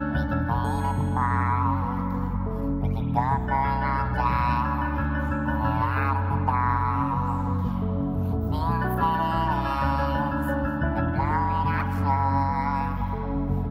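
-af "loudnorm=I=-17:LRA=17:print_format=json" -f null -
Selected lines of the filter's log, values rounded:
"input_i" : "-25.4",
"input_tp" : "-9.8",
"input_lra" : "0.6",
"input_thresh" : "-35.4",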